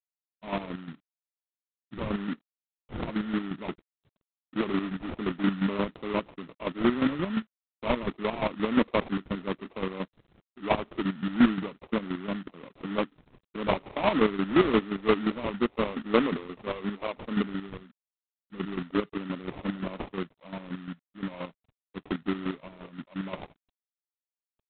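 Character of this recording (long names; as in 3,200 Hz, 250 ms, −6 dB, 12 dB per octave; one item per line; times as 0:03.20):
phaser sweep stages 12, 0.95 Hz, lowest notch 690–1,600 Hz
aliases and images of a low sample rate 1,600 Hz, jitter 20%
chopped level 5.7 Hz, depth 65%, duty 30%
G.726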